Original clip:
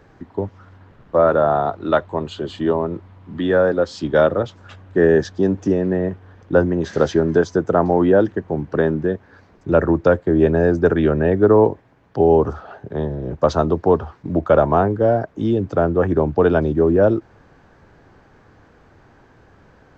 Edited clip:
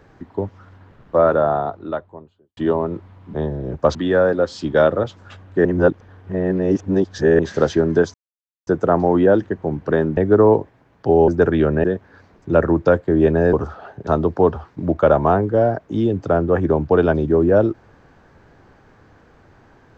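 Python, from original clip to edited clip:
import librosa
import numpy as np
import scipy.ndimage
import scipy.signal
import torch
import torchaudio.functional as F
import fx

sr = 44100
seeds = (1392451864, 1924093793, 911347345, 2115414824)

y = fx.studio_fade_out(x, sr, start_s=1.17, length_s=1.4)
y = fx.edit(y, sr, fx.reverse_span(start_s=5.04, length_s=1.74),
    fx.insert_silence(at_s=7.53, length_s=0.53),
    fx.swap(start_s=9.03, length_s=1.69, other_s=11.28, other_length_s=1.11),
    fx.move(start_s=12.93, length_s=0.61, to_s=3.34), tone=tone)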